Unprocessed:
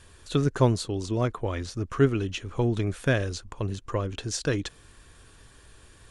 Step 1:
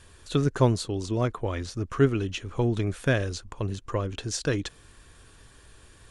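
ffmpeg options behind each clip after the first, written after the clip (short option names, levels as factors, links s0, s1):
-af anull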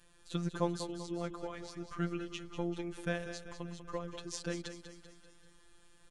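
-af "afftfilt=real='hypot(re,im)*cos(PI*b)':imag='0':win_size=1024:overlap=0.75,aecho=1:1:194|388|582|776|970|1164:0.316|0.168|0.0888|0.0471|0.025|0.0132,volume=0.422"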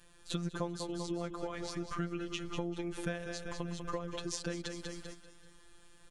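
-af "agate=range=0.447:threshold=0.00178:ratio=16:detection=peak,acompressor=threshold=0.00562:ratio=4,volume=3.16"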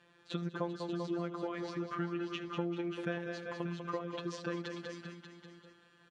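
-af "highpass=170,lowpass=3000,aecho=1:1:76|392|587:0.119|0.168|0.335,volume=1.12"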